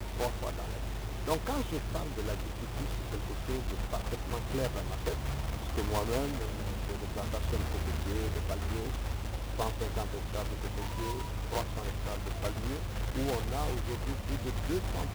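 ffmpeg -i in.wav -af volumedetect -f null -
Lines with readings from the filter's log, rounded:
mean_volume: -33.8 dB
max_volume: -17.4 dB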